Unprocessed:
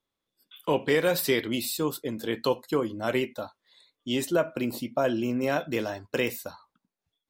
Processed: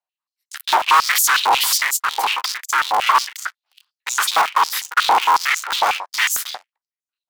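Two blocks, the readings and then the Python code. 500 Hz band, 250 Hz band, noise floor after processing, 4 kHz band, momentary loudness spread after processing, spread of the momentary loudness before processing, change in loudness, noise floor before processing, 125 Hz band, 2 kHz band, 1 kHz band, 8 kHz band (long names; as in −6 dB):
−6.5 dB, below −15 dB, below −85 dBFS, +15.0 dB, 13 LU, 10 LU, +11.0 dB, below −85 dBFS, below −20 dB, +14.5 dB, +20.0 dB, +18.0 dB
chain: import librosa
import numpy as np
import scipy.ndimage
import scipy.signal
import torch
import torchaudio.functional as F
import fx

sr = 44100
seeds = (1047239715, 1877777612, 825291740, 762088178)

y = fx.cycle_switch(x, sr, every=3, mode='inverted')
y = fx.leveller(y, sr, passes=5)
y = y * np.sin(2.0 * np.pi * 640.0 * np.arange(len(y)) / sr)
y = fx.filter_held_highpass(y, sr, hz=11.0, low_hz=770.0, high_hz=6800.0)
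y = y * librosa.db_to_amplitude(1.0)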